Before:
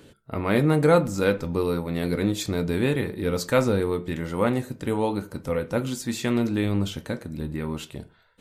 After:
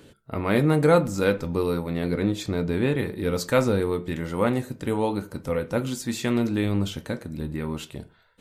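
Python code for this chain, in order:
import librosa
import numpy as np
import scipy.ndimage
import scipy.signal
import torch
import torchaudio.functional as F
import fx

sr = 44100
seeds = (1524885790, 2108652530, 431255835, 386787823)

y = fx.high_shelf(x, sr, hz=4800.0, db=-9.0, at=(1.93, 2.99))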